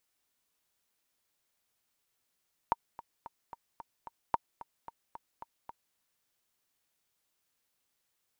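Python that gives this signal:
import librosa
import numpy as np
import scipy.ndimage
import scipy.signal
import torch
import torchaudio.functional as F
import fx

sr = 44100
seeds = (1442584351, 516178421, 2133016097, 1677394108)

y = fx.click_track(sr, bpm=222, beats=6, bars=2, hz=930.0, accent_db=17.5, level_db=-13.5)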